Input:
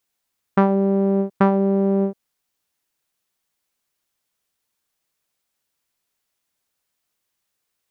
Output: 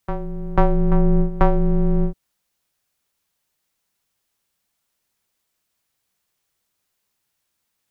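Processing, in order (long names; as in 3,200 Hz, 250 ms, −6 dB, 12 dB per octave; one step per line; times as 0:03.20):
frequency shifter −220 Hz
on a send: backwards echo 491 ms −11 dB
on the sum: level +2 dB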